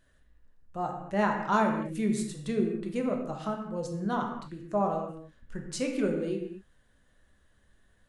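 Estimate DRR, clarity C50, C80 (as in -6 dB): 1.5 dB, 5.0 dB, 6.5 dB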